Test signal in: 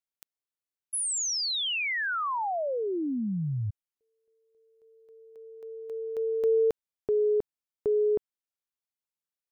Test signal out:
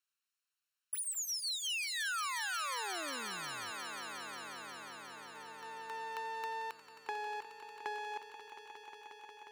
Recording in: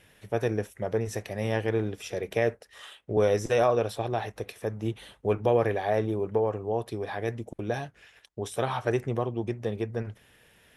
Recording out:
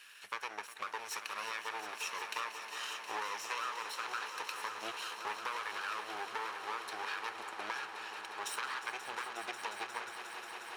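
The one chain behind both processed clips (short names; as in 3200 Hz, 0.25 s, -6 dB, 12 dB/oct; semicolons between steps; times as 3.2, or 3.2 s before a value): minimum comb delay 0.72 ms; HPF 1300 Hz 12 dB/oct; high shelf 8500 Hz -8.5 dB; compressor 6:1, threshold -46 dBFS; swelling echo 0.179 s, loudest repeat 5, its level -12.5 dB; gain +8.5 dB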